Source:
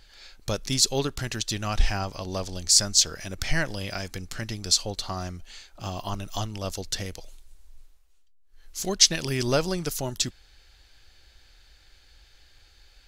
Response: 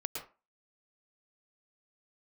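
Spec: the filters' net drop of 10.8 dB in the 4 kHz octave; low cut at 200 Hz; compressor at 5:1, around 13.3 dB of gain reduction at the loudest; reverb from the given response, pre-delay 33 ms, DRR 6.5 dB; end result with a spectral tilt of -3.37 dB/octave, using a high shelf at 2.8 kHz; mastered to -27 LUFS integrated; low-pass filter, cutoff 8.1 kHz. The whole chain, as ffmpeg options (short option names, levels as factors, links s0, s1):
-filter_complex "[0:a]highpass=200,lowpass=8100,highshelf=f=2800:g=-7,equalizer=f=4000:t=o:g=-7,acompressor=threshold=0.0178:ratio=5,asplit=2[s0][s1];[1:a]atrim=start_sample=2205,adelay=33[s2];[s1][s2]afir=irnorm=-1:irlink=0,volume=0.398[s3];[s0][s3]amix=inputs=2:normalize=0,volume=4.22"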